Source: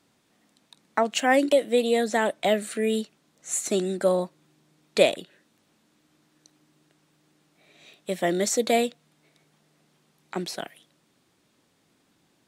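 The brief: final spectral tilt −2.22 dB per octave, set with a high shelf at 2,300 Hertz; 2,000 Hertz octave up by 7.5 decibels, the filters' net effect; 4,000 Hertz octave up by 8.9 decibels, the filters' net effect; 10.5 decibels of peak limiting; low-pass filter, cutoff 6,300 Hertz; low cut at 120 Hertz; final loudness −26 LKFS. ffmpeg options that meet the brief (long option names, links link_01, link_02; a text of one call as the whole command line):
ffmpeg -i in.wav -af "highpass=120,lowpass=6300,equalizer=frequency=2000:width_type=o:gain=4.5,highshelf=frequency=2300:gain=7,equalizer=frequency=4000:width_type=o:gain=4,volume=-2dB,alimiter=limit=-12.5dB:level=0:latency=1" out.wav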